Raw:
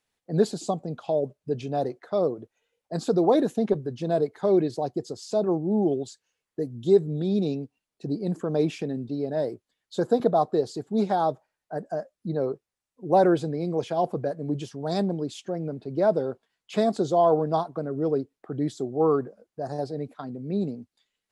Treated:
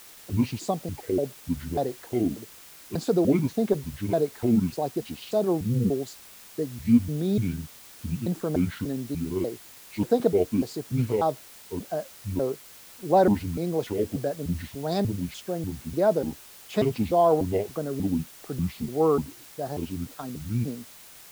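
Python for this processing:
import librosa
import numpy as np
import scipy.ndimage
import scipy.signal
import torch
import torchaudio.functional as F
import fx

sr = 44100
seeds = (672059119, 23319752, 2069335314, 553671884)

y = fx.pitch_trill(x, sr, semitones=-9.0, every_ms=295)
y = fx.quant_dither(y, sr, seeds[0], bits=8, dither='triangular')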